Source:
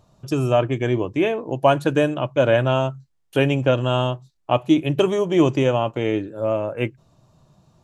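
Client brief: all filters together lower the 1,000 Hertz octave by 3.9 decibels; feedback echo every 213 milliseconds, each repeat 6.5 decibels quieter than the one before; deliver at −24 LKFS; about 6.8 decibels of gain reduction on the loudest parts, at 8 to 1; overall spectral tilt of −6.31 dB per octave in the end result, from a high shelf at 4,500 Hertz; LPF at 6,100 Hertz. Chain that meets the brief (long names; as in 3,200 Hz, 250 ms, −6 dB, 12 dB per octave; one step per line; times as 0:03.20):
low-pass filter 6,100 Hz
parametric band 1,000 Hz −5.5 dB
high-shelf EQ 4,500 Hz −4 dB
downward compressor 8 to 1, threshold −19 dBFS
repeating echo 213 ms, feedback 47%, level −6.5 dB
level +1 dB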